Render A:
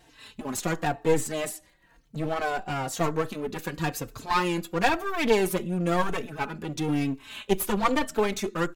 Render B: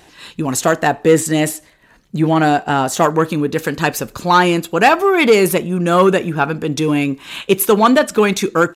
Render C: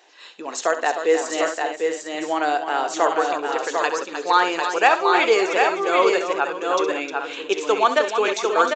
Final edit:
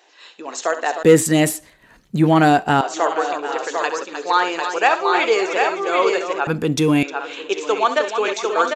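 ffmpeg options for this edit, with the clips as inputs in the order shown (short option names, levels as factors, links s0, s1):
-filter_complex "[1:a]asplit=2[s0][s1];[2:a]asplit=3[s2][s3][s4];[s2]atrim=end=1.032[s5];[s0]atrim=start=1.028:end=2.812[s6];[s3]atrim=start=2.808:end=6.472[s7];[s1]atrim=start=6.468:end=7.032[s8];[s4]atrim=start=7.028[s9];[s5][s6]acrossfade=d=0.004:c1=hsin:c2=hsin[s10];[s10][s7]acrossfade=d=0.004:c1=hsin:c2=hsin[s11];[s11][s8]acrossfade=d=0.004:c1=hsin:c2=hsin[s12];[s12][s9]acrossfade=d=0.004:c1=hsin:c2=hsin"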